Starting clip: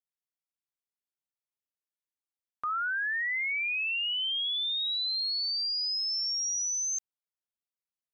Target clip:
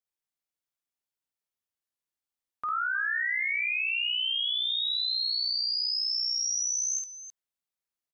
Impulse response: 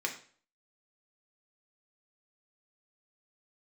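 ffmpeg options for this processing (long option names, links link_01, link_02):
-af "aecho=1:1:52|72|315:0.631|0.106|0.237"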